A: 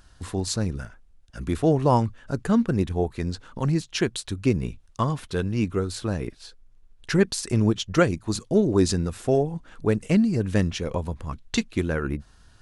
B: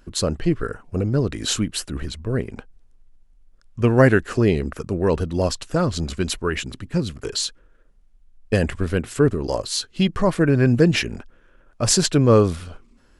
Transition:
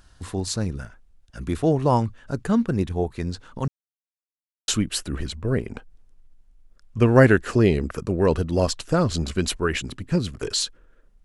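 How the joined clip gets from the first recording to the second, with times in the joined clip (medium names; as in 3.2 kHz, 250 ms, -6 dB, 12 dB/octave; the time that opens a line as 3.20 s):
A
3.68–4.68 s: mute
4.68 s: go over to B from 1.50 s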